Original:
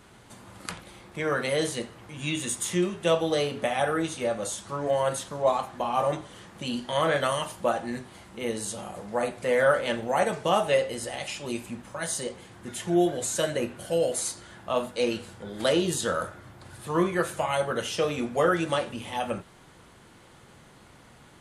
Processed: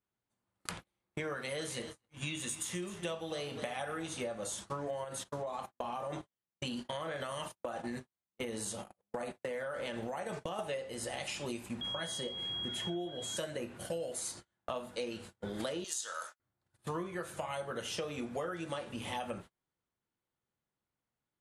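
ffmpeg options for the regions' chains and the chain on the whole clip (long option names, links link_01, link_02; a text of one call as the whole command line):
ffmpeg -i in.wav -filter_complex "[0:a]asettb=1/sr,asplit=3[link_01][link_02][link_03];[link_01]atrim=end=1.344[link_04];[link_02]atrim=start=1.34:end=4.07,asetpts=PTS-STARTPTS,afade=type=in:duration=0.004:curve=qsin,afade=type=out:start_time=2.726:duration=0.004:curve=qsin,equalizer=frequency=330:width_type=o:width=2.9:gain=-4,aecho=1:1:256:0.188,atrim=end_sample=120393[link_05];[link_03]atrim=start=4.066[link_06];[link_04][link_05]acrossfade=duration=0.004:curve1=hsin:curve2=qsin[link_07];[link_07][link_06]acrossfade=duration=0.004:curve1=qsin:curve2=hsin,asettb=1/sr,asplit=3[link_08][link_09][link_10];[link_08]atrim=end=5.044[link_11];[link_09]atrim=start=5.04:end=10.59,asetpts=PTS-STARTPTS,afade=type=in:duration=0.004:curve=qsin,afade=type=out:start_time=5.546:duration=0.004:curve=qsin,acompressor=threshold=-28dB:ratio=10:attack=3.2:release=140:knee=1:detection=peak,agate=range=-15dB:threshold=-38dB:ratio=16:release=100:detection=peak[link_12];[link_10]atrim=start=10.586[link_13];[link_11][link_12]acrossfade=duration=0.004:curve1=hsin:curve2=qsin[link_14];[link_14][link_13]acrossfade=duration=0.004:curve1=qsin:curve2=hsin,asettb=1/sr,asplit=3[link_15][link_16][link_17];[link_15]atrim=end=11.814[link_18];[link_16]atrim=start=11.81:end=13.37,asetpts=PTS-STARTPTS,afade=type=in:duration=0.004:curve=qsin,afade=type=out:start_time=1.556:duration=0.004:curve=qsin,aeval=exprs='val(0)+0.0251*sin(2*PI*3300*n/s)':channel_layout=same,aemphasis=mode=reproduction:type=cd[link_19];[link_17]atrim=start=13.366[link_20];[link_18][link_19]acrossfade=duration=0.004:curve1=hsin:curve2=qsin[link_21];[link_21][link_20]acrossfade=duration=0.004:curve1=qsin:curve2=hsin,asettb=1/sr,asplit=3[link_22][link_23][link_24];[link_22]atrim=end=15.844[link_25];[link_23]atrim=start=15.84:end=16.4,asetpts=PTS-STARTPTS,afade=type=in:duration=0.004:curve=qsin,afade=type=out:start_time=0.556:duration=0.004:curve=qsin,agate=range=-33dB:threshold=-37dB:ratio=3:release=100:detection=peak,highpass=970,equalizer=frequency=6300:width_type=o:width=1.1:gain=12[link_26];[link_24]atrim=start=16.396[link_27];[link_25][link_26]acrossfade=duration=0.004:curve1=hsin:curve2=qsin[link_28];[link_28][link_27]acrossfade=duration=0.004:curve1=qsin:curve2=hsin,agate=range=-40dB:threshold=-40dB:ratio=16:detection=peak,acompressor=threshold=-37dB:ratio=10,volume=1.5dB" out.wav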